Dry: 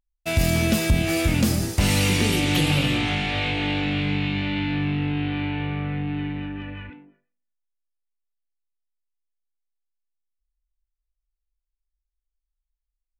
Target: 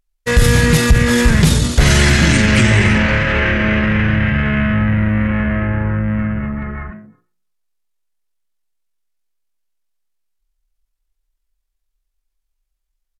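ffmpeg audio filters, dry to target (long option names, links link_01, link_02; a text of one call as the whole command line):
ffmpeg -i in.wav -af "asetrate=32097,aresample=44100,atempo=1.37395,acontrast=88,volume=3dB" out.wav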